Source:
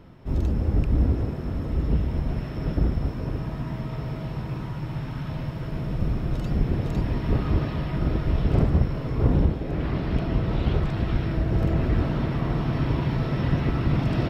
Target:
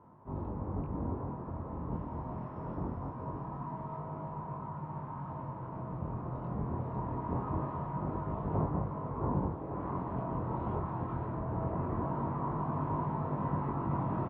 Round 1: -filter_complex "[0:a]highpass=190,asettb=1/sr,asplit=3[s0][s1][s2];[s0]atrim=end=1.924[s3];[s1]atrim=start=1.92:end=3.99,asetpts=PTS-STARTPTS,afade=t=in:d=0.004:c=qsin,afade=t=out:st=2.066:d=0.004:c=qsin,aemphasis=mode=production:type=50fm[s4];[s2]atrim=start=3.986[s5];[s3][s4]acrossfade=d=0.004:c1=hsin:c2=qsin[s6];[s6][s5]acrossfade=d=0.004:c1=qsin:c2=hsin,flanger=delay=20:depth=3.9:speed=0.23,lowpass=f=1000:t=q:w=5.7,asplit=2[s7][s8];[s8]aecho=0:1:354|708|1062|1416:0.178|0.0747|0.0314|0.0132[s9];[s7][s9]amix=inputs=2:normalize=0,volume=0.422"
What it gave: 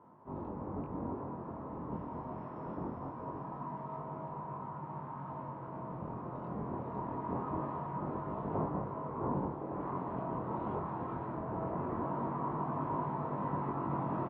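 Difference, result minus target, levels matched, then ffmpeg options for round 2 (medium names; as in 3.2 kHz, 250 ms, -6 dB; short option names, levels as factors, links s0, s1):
echo 125 ms early; 125 Hz band -4.0 dB
-filter_complex "[0:a]highpass=93,asettb=1/sr,asplit=3[s0][s1][s2];[s0]atrim=end=1.924[s3];[s1]atrim=start=1.92:end=3.99,asetpts=PTS-STARTPTS,afade=t=in:d=0.004:c=qsin,afade=t=out:st=2.066:d=0.004:c=qsin,aemphasis=mode=production:type=50fm[s4];[s2]atrim=start=3.986[s5];[s3][s4]acrossfade=d=0.004:c1=hsin:c2=qsin[s6];[s6][s5]acrossfade=d=0.004:c1=qsin:c2=hsin,flanger=delay=20:depth=3.9:speed=0.23,lowpass=f=1000:t=q:w=5.7,asplit=2[s7][s8];[s8]aecho=0:1:479|958|1437|1916:0.178|0.0747|0.0314|0.0132[s9];[s7][s9]amix=inputs=2:normalize=0,volume=0.422"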